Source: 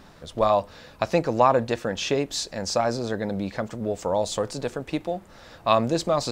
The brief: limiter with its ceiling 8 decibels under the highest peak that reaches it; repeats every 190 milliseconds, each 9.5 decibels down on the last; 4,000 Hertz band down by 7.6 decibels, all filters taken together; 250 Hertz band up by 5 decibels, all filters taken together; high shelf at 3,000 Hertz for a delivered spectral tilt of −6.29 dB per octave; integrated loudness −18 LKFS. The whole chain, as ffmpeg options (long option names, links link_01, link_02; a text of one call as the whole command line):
ffmpeg -i in.wav -af "equalizer=frequency=250:width_type=o:gain=6.5,highshelf=frequency=3000:gain=-5.5,equalizer=frequency=4000:width_type=o:gain=-5,alimiter=limit=-13.5dB:level=0:latency=1,aecho=1:1:190|380|570|760:0.335|0.111|0.0365|0.012,volume=8dB" out.wav